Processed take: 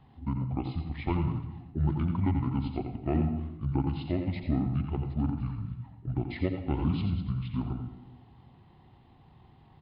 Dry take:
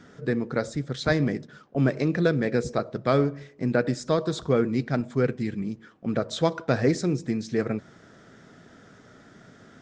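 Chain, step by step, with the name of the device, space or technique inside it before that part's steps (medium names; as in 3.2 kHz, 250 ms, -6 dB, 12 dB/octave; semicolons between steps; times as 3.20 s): monster voice (pitch shift -10 st; bass shelf 140 Hz +6 dB; delay 86 ms -8 dB; reverberation RT60 0.95 s, pre-delay 78 ms, DRR 9 dB); trim -8.5 dB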